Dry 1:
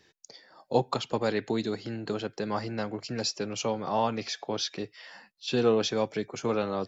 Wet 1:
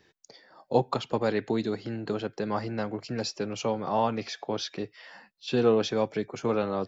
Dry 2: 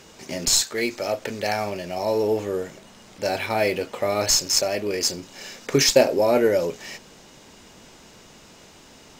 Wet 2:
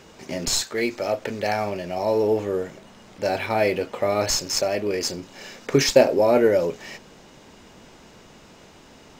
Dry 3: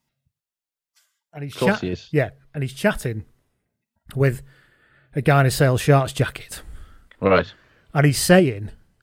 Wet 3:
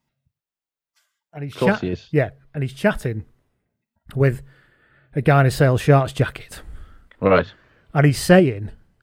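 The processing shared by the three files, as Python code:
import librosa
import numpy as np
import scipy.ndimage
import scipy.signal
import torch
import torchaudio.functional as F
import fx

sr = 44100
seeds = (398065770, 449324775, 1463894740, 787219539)

y = fx.peak_eq(x, sr, hz=11000.0, db=-7.5, octaves=2.6)
y = y * 10.0 ** (1.5 / 20.0)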